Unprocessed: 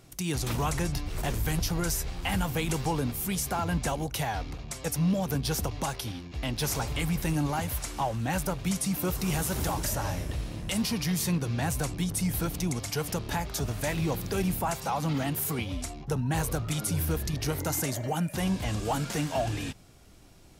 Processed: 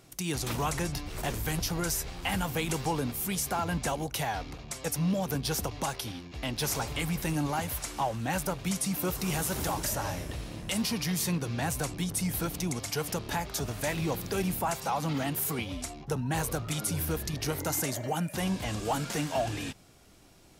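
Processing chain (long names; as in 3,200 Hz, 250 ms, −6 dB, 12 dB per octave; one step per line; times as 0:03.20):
low-shelf EQ 130 Hz −7.5 dB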